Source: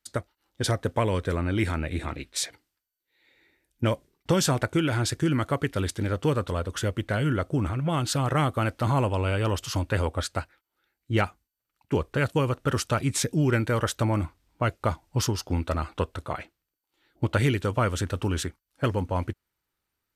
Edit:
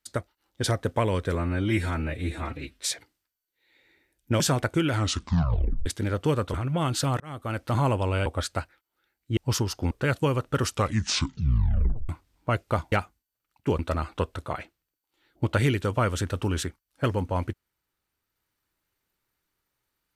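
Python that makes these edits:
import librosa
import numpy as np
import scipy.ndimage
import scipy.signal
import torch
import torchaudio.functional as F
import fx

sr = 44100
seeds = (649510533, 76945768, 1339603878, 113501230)

y = fx.edit(x, sr, fx.stretch_span(start_s=1.35, length_s=0.96, factor=1.5),
    fx.cut(start_s=3.92, length_s=0.47),
    fx.tape_stop(start_s=4.91, length_s=0.94),
    fx.cut(start_s=6.53, length_s=1.13),
    fx.fade_in_span(start_s=8.32, length_s=0.55),
    fx.cut(start_s=9.38, length_s=0.68),
    fx.swap(start_s=11.17, length_s=0.87, other_s=15.05, other_length_s=0.54),
    fx.tape_stop(start_s=12.8, length_s=1.42), tone=tone)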